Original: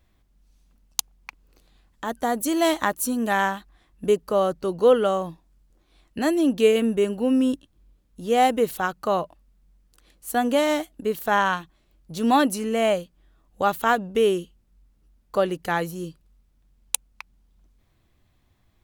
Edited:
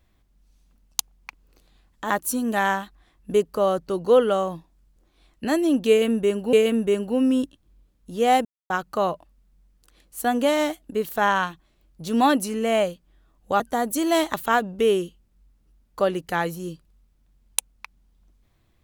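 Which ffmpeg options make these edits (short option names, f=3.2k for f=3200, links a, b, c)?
-filter_complex "[0:a]asplit=7[a][b][c][d][e][f][g];[a]atrim=end=2.102[h];[b]atrim=start=2.838:end=7.272[i];[c]atrim=start=6.628:end=8.55,asetpts=PTS-STARTPTS,afade=t=out:st=1.918:d=0.004:c=hsin[j];[d]atrim=start=8.55:end=8.8,asetpts=PTS-STARTPTS,volume=0[k];[e]atrim=start=8.8:end=13.702,asetpts=PTS-STARTPTS,afade=t=in:d=0.004:c=hsin[l];[f]atrim=start=2.098:end=2.842[m];[g]atrim=start=13.698[n];[h][i]acrossfade=d=0.004:c1=hsin:c2=hsin[o];[j][k][l]concat=n=3:v=0:a=1[p];[o][p]acrossfade=d=0.004:c1=hsin:c2=hsin[q];[q][m]acrossfade=d=0.004:c1=hsin:c2=hsin[r];[r][n]acrossfade=d=0.004:c1=hsin:c2=hsin"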